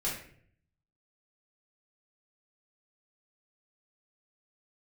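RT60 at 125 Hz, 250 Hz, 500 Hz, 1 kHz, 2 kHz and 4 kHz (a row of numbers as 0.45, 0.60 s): 1.0, 0.75, 0.65, 0.50, 0.55, 0.45 s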